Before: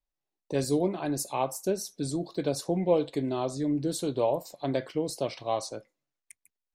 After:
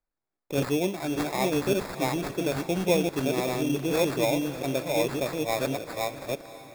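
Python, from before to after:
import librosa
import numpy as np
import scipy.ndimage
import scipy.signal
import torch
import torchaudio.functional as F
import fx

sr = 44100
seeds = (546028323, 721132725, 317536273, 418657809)

p1 = fx.reverse_delay(x, sr, ms=578, wet_db=-1)
p2 = fx.sample_hold(p1, sr, seeds[0], rate_hz=3000.0, jitter_pct=0)
y = p2 + fx.echo_diffused(p2, sr, ms=553, feedback_pct=45, wet_db=-14.5, dry=0)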